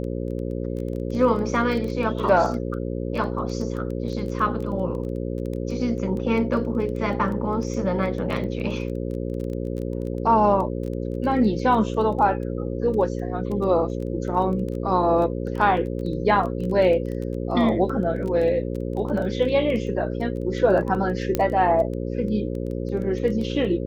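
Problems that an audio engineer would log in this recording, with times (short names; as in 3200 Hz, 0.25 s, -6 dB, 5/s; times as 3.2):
buzz 60 Hz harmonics 9 -28 dBFS
crackle 12/s -29 dBFS
15.77 gap 3.1 ms
21.35 pop -8 dBFS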